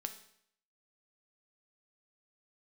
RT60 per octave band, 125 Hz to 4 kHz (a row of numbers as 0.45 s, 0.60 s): 0.65 s, 0.65 s, 0.65 s, 0.65 s, 0.65 s, 0.65 s